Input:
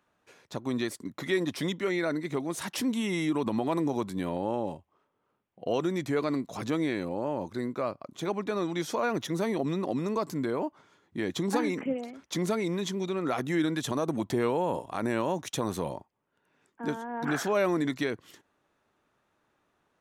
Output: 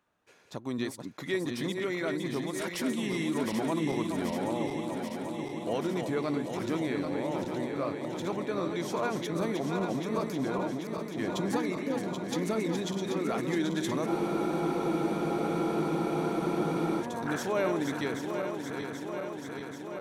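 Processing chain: regenerating reverse delay 0.392 s, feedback 84%, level -6 dB; spectral freeze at 14.09, 2.92 s; gain -3.5 dB

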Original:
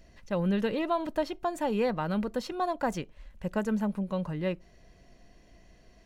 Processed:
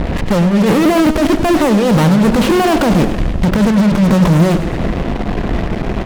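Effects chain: median filter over 9 samples; steep low-pass 3800 Hz; low shelf 460 Hz +6 dB; negative-ratio compressor -30 dBFS, ratio -0.5; fuzz box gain 51 dB, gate -48 dBFS; bell 200 Hz +5 dB 2.3 oct; warbling echo 0.1 s, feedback 64%, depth 122 cents, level -11 dB

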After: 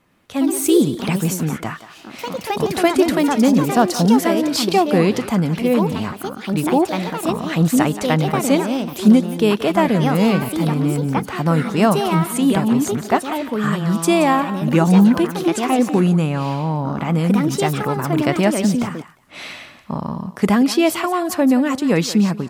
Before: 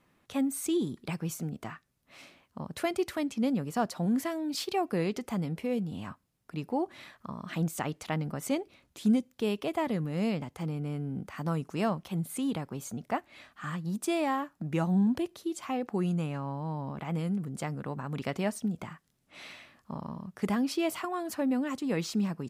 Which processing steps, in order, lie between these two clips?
thinning echo 0.176 s, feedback 17%, level -12.5 dB; echoes that change speed 0.115 s, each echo +3 st, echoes 2, each echo -6 dB; AGC gain up to 7.5 dB; gain +6.5 dB

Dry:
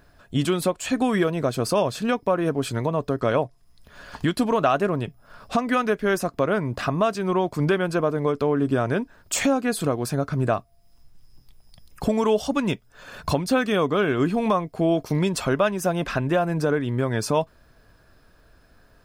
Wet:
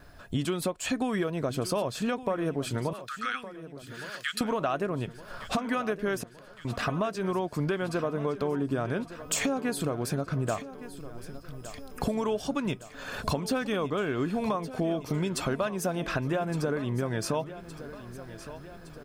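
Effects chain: 2.93–4.41 steep high-pass 1200 Hz 96 dB/oct; gate with hold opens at -53 dBFS; compressor 3:1, threshold -33 dBFS, peak gain reduction 13 dB; 6.2–6.65 flipped gate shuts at -28 dBFS, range -26 dB; on a send: feedback echo 1.164 s, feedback 58%, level -14.5 dB; on the sum: gain +3.5 dB

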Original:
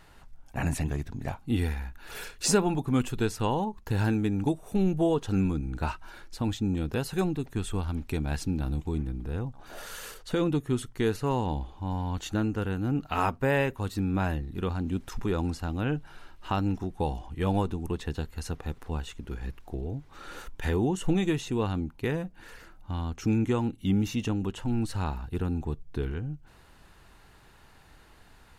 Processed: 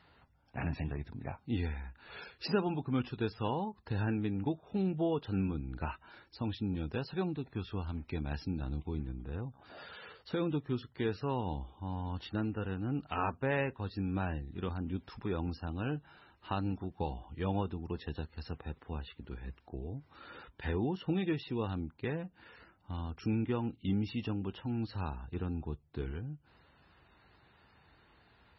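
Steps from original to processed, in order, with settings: HPF 54 Hz 24 dB/oct; gain -6.5 dB; MP3 16 kbps 24000 Hz

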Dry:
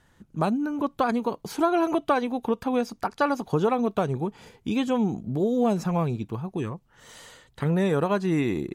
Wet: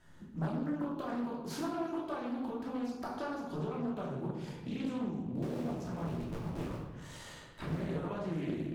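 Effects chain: 5.42–7.88 cycle switcher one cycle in 3, muted; compressor 8:1, threshold -36 dBFS, peak gain reduction 18.5 dB; dark delay 0.168 s, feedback 75%, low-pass 3900 Hz, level -22 dB; shoebox room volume 450 m³, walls mixed, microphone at 2.8 m; Doppler distortion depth 0.43 ms; gain -7 dB

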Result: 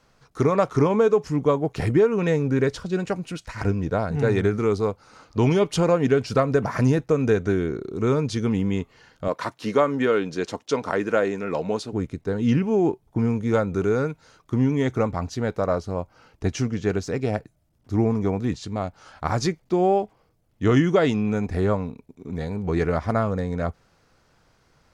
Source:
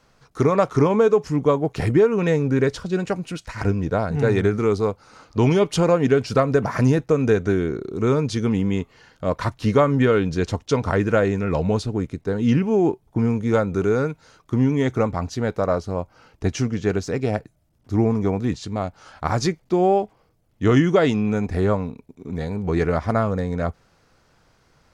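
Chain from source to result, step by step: 9.28–11.93 HPF 250 Hz 12 dB/oct; gain -2 dB

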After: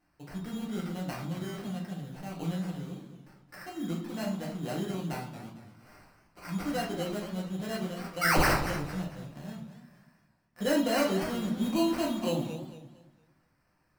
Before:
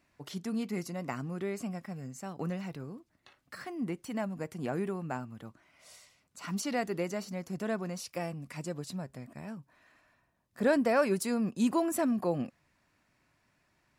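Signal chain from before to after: 8.21–8.53 painted sound rise 1200–9300 Hz -23 dBFS; sample-rate reducer 3500 Hz, jitter 0%; 3.77–4.61 doubler 41 ms -7.5 dB; reverb RT60 0.50 s, pre-delay 6 ms, DRR -3 dB; warbling echo 0.228 s, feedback 32%, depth 147 cents, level -11 dB; gain -6 dB

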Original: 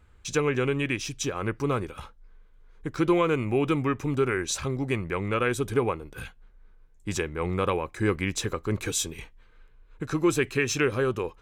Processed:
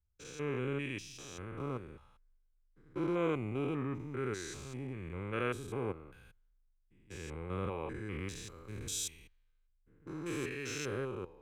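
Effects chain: stepped spectrum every 0.2 s; three-band expander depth 70%; gain -9 dB

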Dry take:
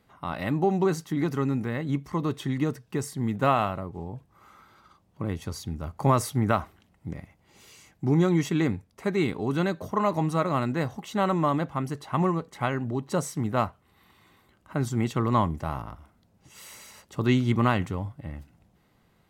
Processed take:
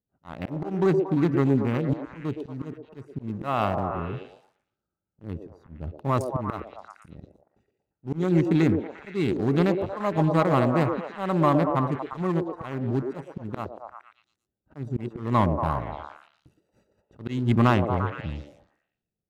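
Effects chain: Wiener smoothing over 41 samples; gate -59 dBFS, range -22 dB; auto swell 0.274 s; sample leveller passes 1; on a send: delay with a stepping band-pass 0.116 s, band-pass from 450 Hz, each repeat 0.7 oct, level -1 dB; on the sum: gain +1 dB

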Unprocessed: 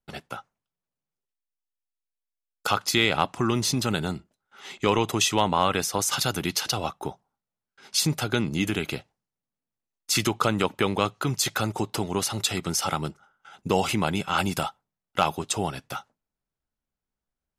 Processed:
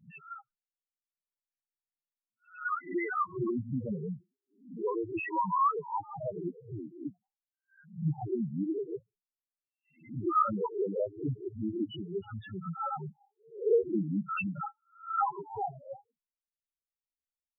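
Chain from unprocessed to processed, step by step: spectral swells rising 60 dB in 0.46 s; gate -55 dBFS, range -15 dB; LFO low-pass saw down 0.42 Hz 260–3200 Hz; in parallel at -6.5 dB: bit-crush 4-bit; on the sum: loudest bins only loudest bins 2; gain -6.5 dB

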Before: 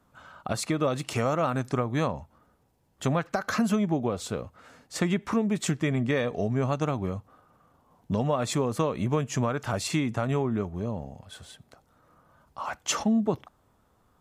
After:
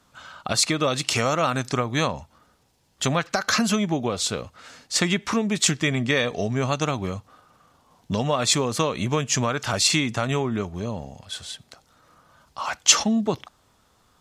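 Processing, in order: bell 4800 Hz +13.5 dB 2.6 oct; gain +1.5 dB

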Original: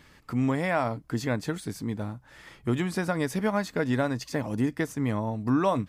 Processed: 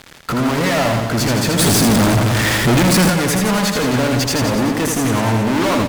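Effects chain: fuzz box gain 44 dB, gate -51 dBFS; reverse bouncing-ball echo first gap 80 ms, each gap 1.1×, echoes 5; 1.59–3.1 power-law curve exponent 0.35; gain -4 dB

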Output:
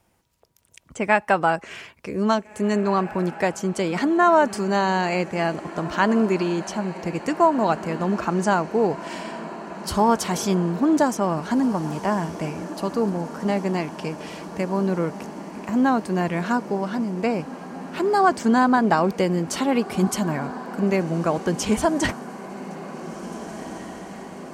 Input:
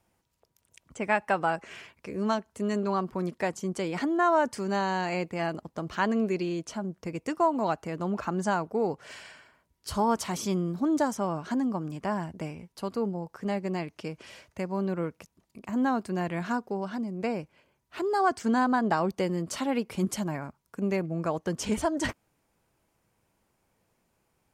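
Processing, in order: diffused feedback echo 1.84 s, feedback 72%, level -15 dB; gain +7 dB

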